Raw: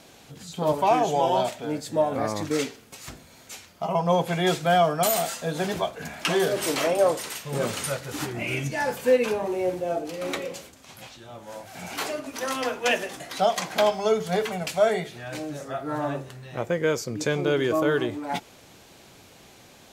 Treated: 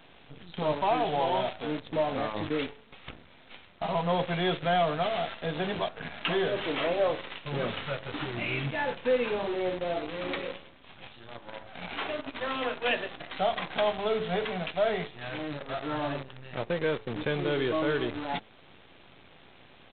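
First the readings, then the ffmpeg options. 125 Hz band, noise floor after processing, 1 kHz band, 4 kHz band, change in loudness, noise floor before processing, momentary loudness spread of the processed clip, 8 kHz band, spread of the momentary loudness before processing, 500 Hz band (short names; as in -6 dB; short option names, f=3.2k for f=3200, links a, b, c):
-4.5 dB, -55 dBFS, -5.0 dB, -3.0 dB, -5.0 dB, -51 dBFS, 11 LU, under -40 dB, 17 LU, -5.5 dB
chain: -filter_complex "[0:a]highshelf=f=2.6k:g=3,bandreject=f=108.4:t=h:w=4,bandreject=f=216.8:t=h:w=4,bandreject=f=325.2:t=h:w=4,bandreject=f=433.6:t=h:w=4,bandreject=f=542:t=h:w=4,bandreject=f=650.4:t=h:w=4,bandreject=f=758.8:t=h:w=4,asplit=2[a][b];[b]acompressor=threshold=-39dB:ratio=4,volume=-1dB[c];[a][c]amix=inputs=2:normalize=0,asoftclip=type=tanh:threshold=-11.5dB,aeval=exprs='0.251*(cos(1*acos(clip(val(0)/0.251,-1,1)))-cos(1*PI/2))+0.00178*(cos(2*acos(clip(val(0)/0.251,-1,1)))-cos(2*PI/2))+0.00355*(cos(4*acos(clip(val(0)/0.251,-1,1)))-cos(4*PI/2))+0.0112*(cos(6*acos(clip(val(0)/0.251,-1,1)))-cos(6*PI/2))':c=same,aresample=8000,acrusher=bits=6:dc=4:mix=0:aa=0.000001,aresample=44100,volume=-5.5dB"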